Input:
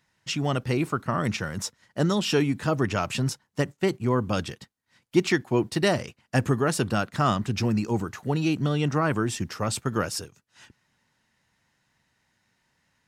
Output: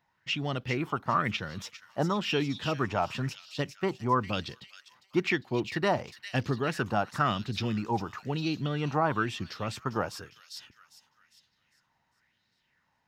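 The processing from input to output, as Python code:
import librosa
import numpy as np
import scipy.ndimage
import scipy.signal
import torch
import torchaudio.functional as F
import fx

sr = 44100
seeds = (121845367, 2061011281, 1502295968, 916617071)

p1 = fx.peak_eq(x, sr, hz=9000.0, db=-13.5, octaves=0.99)
p2 = p1 + fx.echo_wet_highpass(p1, sr, ms=402, feedback_pct=41, hz=4000.0, wet_db=-3.5, dry=0)
p3 = fx.bell_lfo(p2, sr, hz=1.0, low_hz=790.0, high_hz=4300.0, db=12)
y = p3 * 10.0 ** (-6.5 / 20.0)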